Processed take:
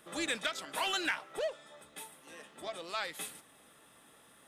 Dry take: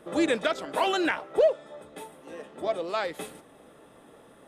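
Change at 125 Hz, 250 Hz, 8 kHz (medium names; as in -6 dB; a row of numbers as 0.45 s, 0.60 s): -10.5 dB, -14.0 dB, +2.0 dB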